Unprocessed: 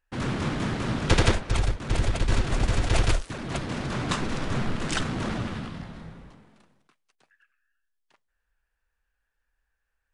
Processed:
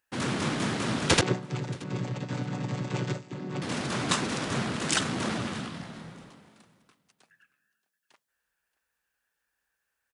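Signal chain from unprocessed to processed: 1.21–3.62 s: vocoder on a held chord minor triad, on B2; high-pass 140 Hz 12 dB/octave; treble shelf 4.6 kHz +9 dB; feedback delay 627 ms, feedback 20%, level -23 dB

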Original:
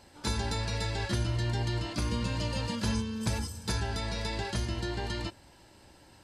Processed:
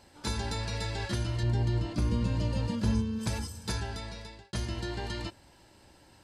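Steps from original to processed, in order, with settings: 1.43–3.19 s: tilt shelf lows +5.5 dB, about 660 Hz; 3.72–4.53 s: fade out; trim -1.5 dB

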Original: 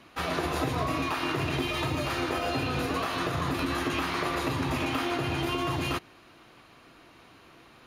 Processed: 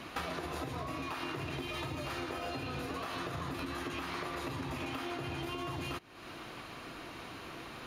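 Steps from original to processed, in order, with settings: compression 12:1, threshold -44 dBFS, peak gain reduction 20 dB; trim +8 dB

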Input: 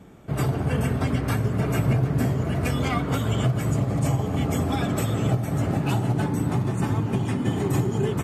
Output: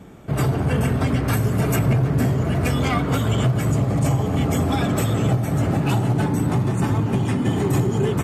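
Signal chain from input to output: 1.33–1.76 s: treble shelf 6.8 kHz +12 dB; saturation -16 dBFS, distortion -20 dB; trim +5 dB

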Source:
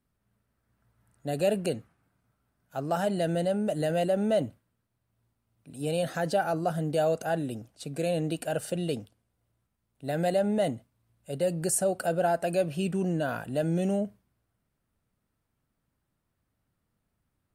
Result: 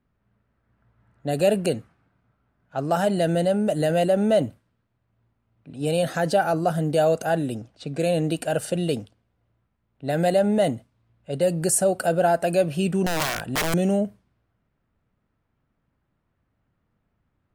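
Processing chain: level-controlled noise filter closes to 2.6 kHz, open at -27 dBFS; 13.06–13.74 s: integer overflow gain 24.5 dB; trim +6 dB

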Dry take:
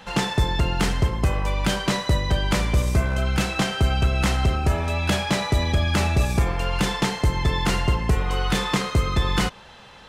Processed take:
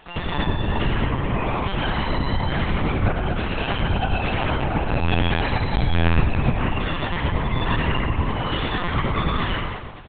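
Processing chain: feedback delay 121 ms, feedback 45%, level -8.5 dB; reverberation RT60 1.1 s, pre-delay 82 ms, DRR -4 dB; LPC vocoder at 8 kHz pitch kept; trim -5 dB

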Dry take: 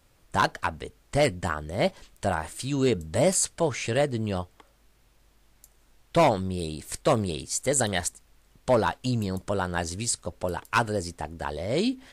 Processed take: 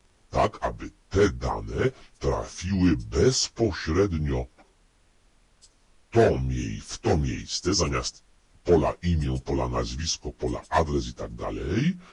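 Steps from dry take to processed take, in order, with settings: frequency-domain pitch shifter -6.5 st; dynamic bell 3 kHz, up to -4 dB, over -46 dBFS, Q 1.6; trim +3 dB

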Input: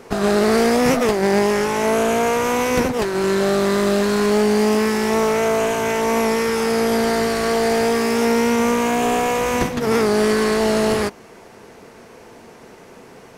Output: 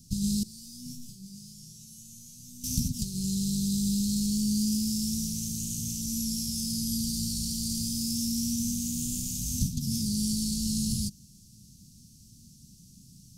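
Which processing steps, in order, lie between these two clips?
inverse Chebyshev band-stop 480–1900 Hz, stop band 60 dB; 0.43–2.64 s: chord resonator B2 major, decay 0.37 s

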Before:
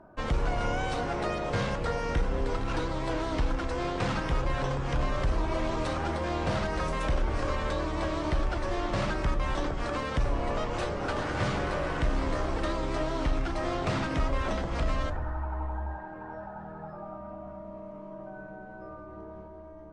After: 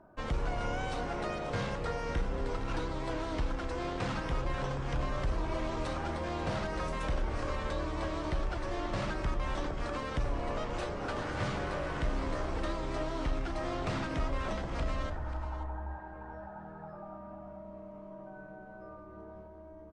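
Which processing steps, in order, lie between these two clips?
delay 537 ms -13.5 dB; trim -5 dB

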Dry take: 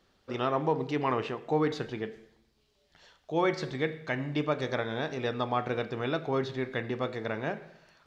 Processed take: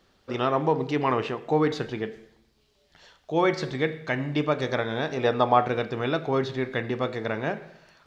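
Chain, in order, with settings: 5.08–5.67 s: dynamic bell 720 Hz, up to +7 dB, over -40 dBFS, Q 0.79; trim +4.5 dB

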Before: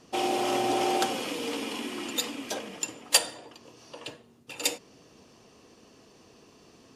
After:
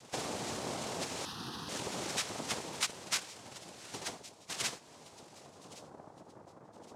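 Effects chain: knee-point frequency compression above 3 kHz 1.5:1; band-stop 770 Hz; compression 16:1, threshold -36 dBFS, peak gain reduction 19.5 dB; low-pass sweep 5.4 kHz -> 220 Hz, 4.56–6.28 s; noise-vocoded speech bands 2; 1.25–1.69 s: static phaser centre 2.2 kHz, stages 6; feedback echo behind a high-pass 1117 ms, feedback 35%, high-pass 2.5 kHz, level -18 dB

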